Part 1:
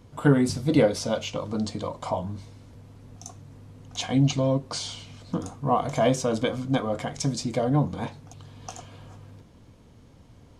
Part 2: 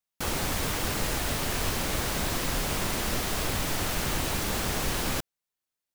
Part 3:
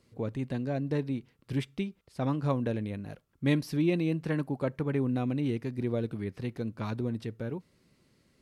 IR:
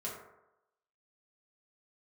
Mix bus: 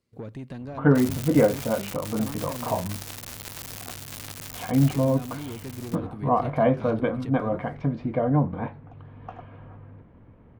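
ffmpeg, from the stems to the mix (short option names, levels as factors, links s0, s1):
-filter_complex "[0:a]lowpass=f=2100:w=0.5412,lowpass=f=2100:w=1.3066,adelay=600,volume=1.12[s0];[1:a]highpass=180,acrusher=bits=3:mix=0:aa=0.000001,adelay=750,volume=0.668,afade=t=out:st=4.83:d=0.28:silence=0.446684[s1];[2:a]agate=range=0.2:threshold=0.00178:ratio=16:detection=peak,asoftclip=type=tanh:threshold=0.0422,acompressor=threshold=0.0158:ratio=6,volume=1.26,asplit=3[s2][s3][s4];[s2]atrim=end=2.78,asetpts=PTS-STARTPTS,afade=t=out:st=2.776:d=0.004:c=hsin[s5];[s3]atrim=start=2.78:end=4.9,asetpts=PTS-STARTPTS,volume=0[s6];[s4]atrim=start=4.9,asetpts=PTS-STARTPTS,afade=t=in:d=0.004:c=hsin[s7];[s5][s6][s7]concat=n=3:v=0:a=1[s8];[s0][s1][s8]amix=inputs=3:normalize=0"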